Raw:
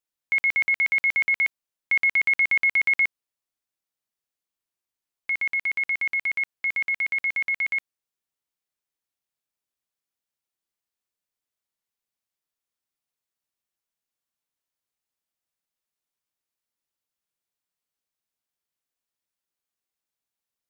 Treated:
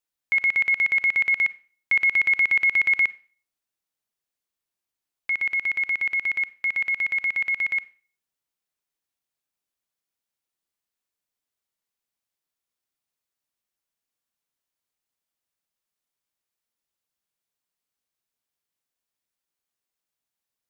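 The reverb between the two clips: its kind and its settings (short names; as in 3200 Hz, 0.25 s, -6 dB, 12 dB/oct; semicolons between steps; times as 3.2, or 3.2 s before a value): Schroeder reverb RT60 0.39 s, combs from 31 ms, DRR 17.5 dB; gain +1 dB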